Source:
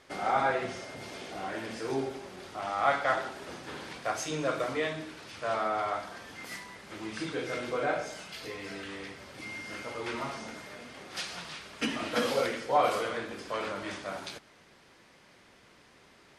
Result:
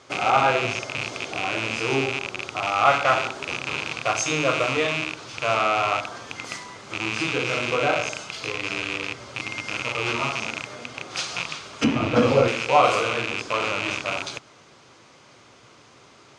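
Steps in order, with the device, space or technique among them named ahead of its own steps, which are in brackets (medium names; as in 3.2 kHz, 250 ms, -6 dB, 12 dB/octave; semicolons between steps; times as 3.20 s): car door speaker with a rattle (rattle on loud lows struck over -49 dBFS, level -21 dBFS; cabinet simulation 81–8400 Hz, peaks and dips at 120 Hz +7 dB, 190 Hz -6 dB, 1.2 kHz +4 dB, 1.8 kHz -7 dB, 6.5 kHz +5 dB); 11.84–12.48 s: tilt EQ -3.5 dB/octave; trim +7.5 dB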